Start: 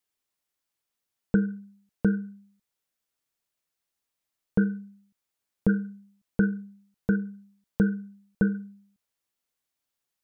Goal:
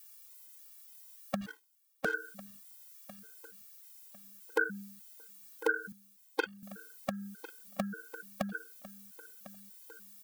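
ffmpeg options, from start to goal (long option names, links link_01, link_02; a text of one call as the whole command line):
ffmpeg -i in.wav -filter_complex "[0:a]highpass=660,aemphasis=mode=production:type=75kf,alimiter=level_in=2.5dB:limit=-24dB:level=0:latency=1:release=313,volume=-2.5dB,acompressor=threshold=-41dB:ratio=10,asettb=1/sr,asplit=3[link_01][link_02][link_03];[link_01]atrim=end=1.414[link_04];[link_02]atrim=start=1.41:end=2.14,asetpts=PTS-STARTPTS,afade=type=in:duration=0.004:curve=qsin,afade=type=out:start_time=0.726:duration=0.004:curve=qsin,aeval=exprs='sgn(val(0))*max(abs(val(0))-0.00133,0)':channel_layout=same[link_05];[link_03]atrim=start=2.136[link_06];[link_04][link_05]acrossfade=duration=0.004:curve1=hsin:curve2=qsin[link_07];[link_07][link_06]acrossfade=duration=0.004:curve1=qsin:curve2=hsin,asettb=1/sr,asplit=3[link_08][link_09][link_10];[link_08]atrim=end=5.924[link_11];[link_09]atrim=start=5.92:end=6.63,asetpts=PTS-STARTPTS,afade=type=in:duration=0.004:curve=qsin,afade=type=out:start_time=0.706:duration=0.004:curve=qsin,aeval=exprs='0.0473*(cos(1*acos(clip(val(0)/0.0473,-1,1)))-cos(1*PI/2))+0.0106*(cos(5*acos(clip(val(0)/0.0473,-1,1)))-cos(5*PI/2))+0.0168*(cos(7*acos(clip(val(0)/0.0473,-1,1)))-cos(7*PI/2))':channel_layout=same[link_12];[link_10]atrim=start=6.626[link_13];[link_11][link_12]acrossfade=duration=0.004:curve1=hsin:curve2=qsin[link_14];[link_14][link_13]acrossfade=duration=0.004:curve1=qsin:curve2=hsin,asplit=2[link_15][link_16];[link_16]aecho=0:1:1051|2102|3153:0.141|0.0523|0.0193[link_17];[link_15][link_17]amix=inputs=2:normalize=0,afftfilt=real='re*gt(sin(2*PI*1.7*pts/sr)*(1-2*mod(floor(b*sr/1024/270),2)),0)':imag='im*gt(sin(2*PI*1.7*pts/sr)*(1-2*mod(floor(b*sr/1024/270),2)),0)':win_size=1024:overlap=0.75,volume=17dB" out.wav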